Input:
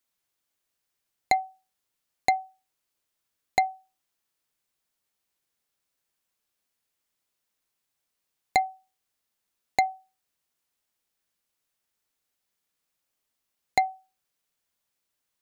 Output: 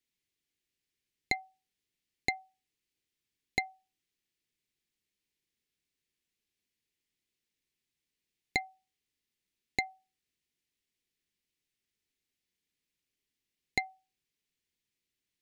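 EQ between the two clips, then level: band shelf 900 Hz -15.5 dB; high shelf 6600 Hz -11.5 dB; 0.0 dB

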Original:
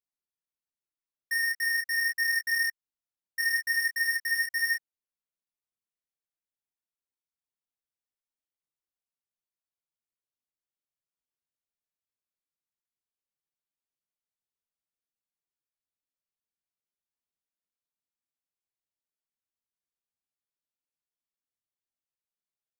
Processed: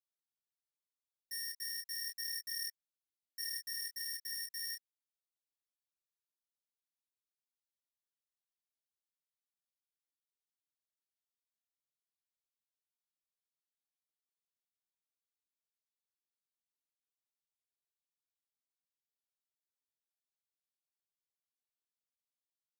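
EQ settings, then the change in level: ladder high-pass 2900 Hz, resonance 40%; high shelf 5700 Hz +5 dB; -2.5 dB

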